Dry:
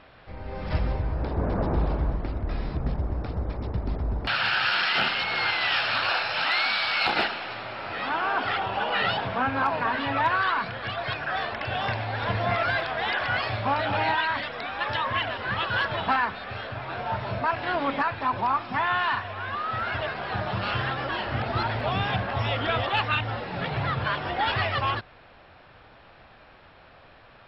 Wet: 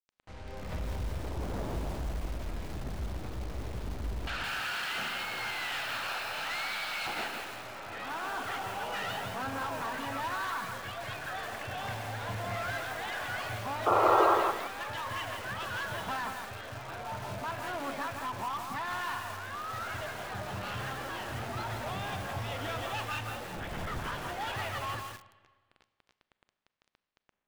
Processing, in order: bit crusher 7-bit; reverberation RT60 1.5 s, pre-delay 30 ms, DRR 14 dB; 23.57–24.12 s: LPC vocoder at 8 kHz whisper; distance through air 86 m; saturation -23.5 dBFS, distortion -13 dB; 13.86–14.35 s: painted sound noise 330–1400 Hz -17 dBFS; bit-crushed delay 166 ms, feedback 35%, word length 6-bit, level -3 dB; trim -7.5 dB

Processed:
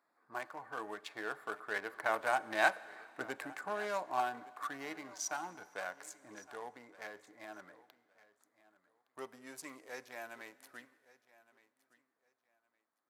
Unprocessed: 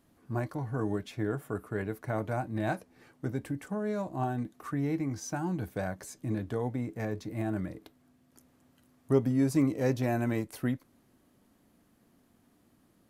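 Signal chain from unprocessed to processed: local Wiener filter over 15 samples; Doppler pass-by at 3.02 s, 8 m/s, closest 8.8 m; high-pass 1.1 kHz 12 dB/octave; feedback delay 1165 ms, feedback 22%, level -20 dB; Schroeder reverb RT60 2.2 s, combs from 31 ms, DRR 18.5 dB; trim +11.5 dB

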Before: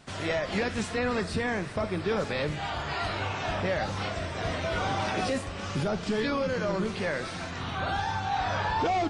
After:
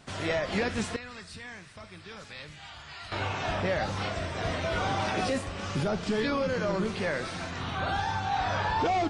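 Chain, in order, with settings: 0.96–3.12 s: amplifier tone stack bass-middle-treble 5-5-5

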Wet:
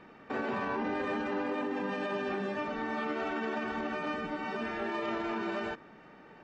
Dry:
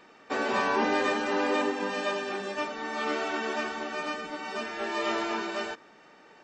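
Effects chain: tone controls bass +11 dB, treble -15 dB; peak limiter -25.5 dBFS, peak gain reduction 12 dB

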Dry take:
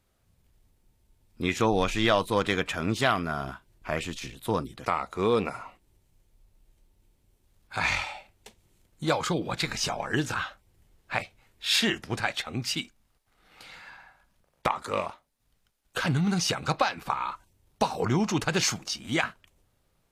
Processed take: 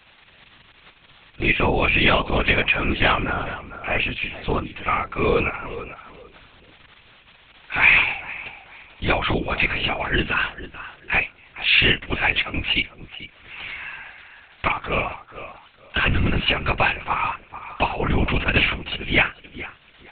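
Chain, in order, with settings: in parallel at -1.5 dB: peak limiter -18.5 dBFS, peak gain reduction 10 dB; on the sum: resonant low-pass 2.6 kHz, resonance Q 4.3; crackle 130 per s -35 dBFS; on a send: tape echo 445 ms, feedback 22%, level -12 dB, low-pass 1.1 kHz; on the sum: LPC vocoder at 8 kHz whisper; tape noise reduction on one side only encoder only

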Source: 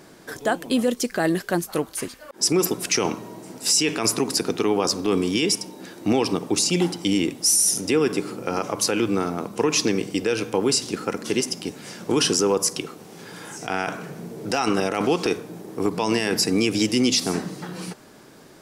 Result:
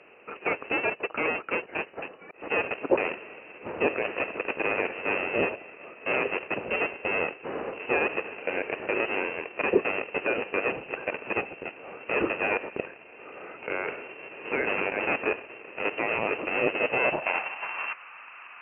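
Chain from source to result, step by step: square wave that keeps the level; frequency inversion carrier 2.9 kHz; band-pass sweep 440 Hz -> 1.1 kHz, 16.76–17.92 s; trim +8.5 dB

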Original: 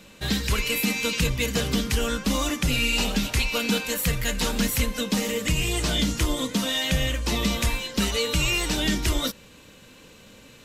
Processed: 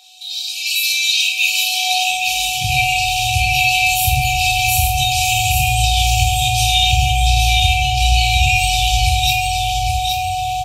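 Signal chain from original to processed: FFT band-reject 150–2300 Hz; treble shelf 9.9 kHz -3 dB, from 6.72 s -11.5 dB, from 8.56 s -2.5 dB; comb 1.6 ms, depth 59%; dynamic bell 2.5 kHz, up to +4 dB, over -42 dBFS, Q 4.9; compression 2:1, threshold -38 dBFS, peak gain reduction 12 dB; peak limiter -28 dBFS, peak gain reduction 10 dB; level rider gain up to 15 dB; whistle 740 Hz -26 dBFS; high-pass sweep 4 kHz -> 80 Hz, 1.13–2.79 s; feedback delay 819 ms, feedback 32%, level -4 dB; reverberation RT60 0.45 s, pre-delay 7 ms, DRR -1 dB; trim +1 dB

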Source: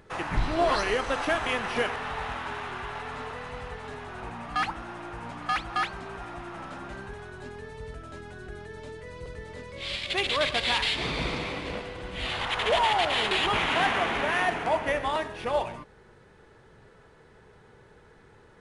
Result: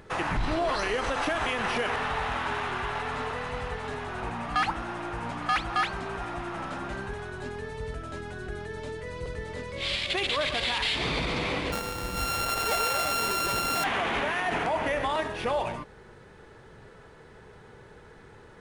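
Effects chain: 11.72–13.84 s: sorted samples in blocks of 32 samples; peak limiter -24 dBFS, peak gain reduction 9.5 dB; trim +4.5 dB

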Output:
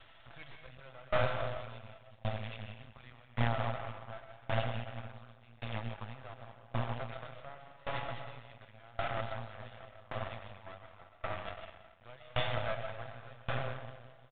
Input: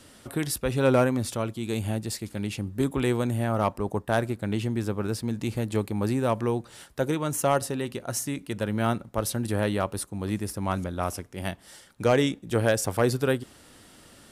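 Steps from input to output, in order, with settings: elliptic band-stop 120–620 Hz; comb 6 ms, depth 46%; in parallel at -1.5 dB: peak limiter -22.5 dBFS, peak gain reduction 10.5 dB; on the sum: feedback comb 220 Hz, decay 0.34 s, harmonics all, mix 60%; algorithmic reverb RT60 3.7 s, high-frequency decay 0.3×, pre-delay 85 ms, DRR -2 dB; half-wave rectifier; companded quantiser 4-bit; resampled via 8 kHz; sawtooth tremolo in dB decaying 0.89 Hz, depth 27 dB; trim +2 dB

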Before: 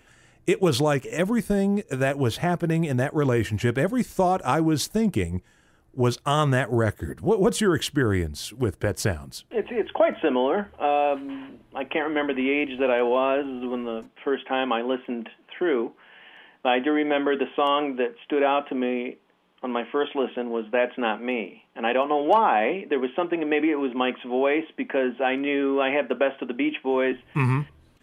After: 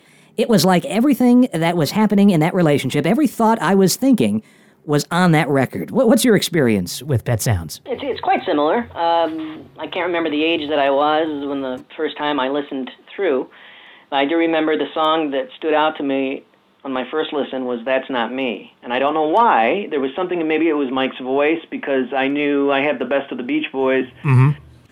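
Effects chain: gliding tape speed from 125% -> 100%; high-pass sweep 200 Hz -> 99 Hz, 6.67–7.24 s; transient shaper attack -6 dB, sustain +3 dB; trim +6 dB

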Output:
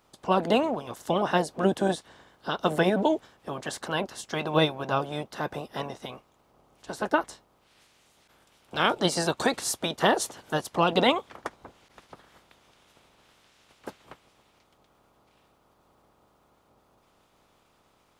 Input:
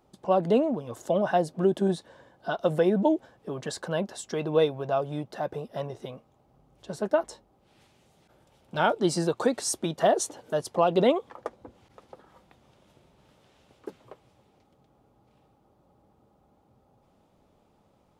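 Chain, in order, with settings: spectral peaks clipped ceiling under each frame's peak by 17 dB

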